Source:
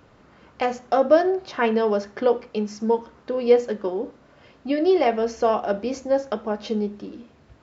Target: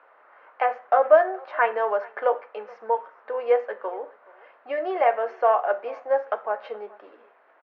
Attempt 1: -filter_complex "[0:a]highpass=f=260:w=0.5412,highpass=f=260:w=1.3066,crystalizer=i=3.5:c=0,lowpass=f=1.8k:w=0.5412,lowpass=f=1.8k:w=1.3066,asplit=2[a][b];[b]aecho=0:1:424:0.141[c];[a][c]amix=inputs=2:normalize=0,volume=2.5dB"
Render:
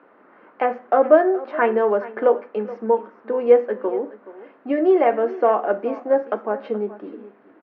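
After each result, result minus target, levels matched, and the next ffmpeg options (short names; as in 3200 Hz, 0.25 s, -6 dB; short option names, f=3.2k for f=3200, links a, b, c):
250 Hz band +14.5 dB; echo-to-direct +6.5 dB
-filter_complex "[0:a]highpass=f=580:w=0.5412,highpass=f=580:w=1.3066,crystalizer=i=3.5:c=0,lowpass=f=1.8k:w=0.5412,lowpass=f=1.8k:w=1.3066,asplit=2[a][b];[b]aecho=0:1:424:0.141[c];[a][c]amix=inputs=2:normalize=0,volume=2.5dB"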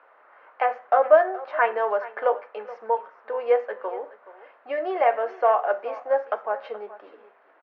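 echo-to-direct +6.5 dB
-filter_complex "[0:a]highpass=f=580:w=0.5412,highpass=f=580:w=1.3066,crystalizer=i=3.5:c=0,lowpass=f=1.8k:w=0.5412,lowpass=f=1.8k:w=1.3066,asplit=2[a][b];[b]aecho=0:1:424:0.0668[c];[a][c]amix=inputs=2:normalize=0,volume=2.5dB"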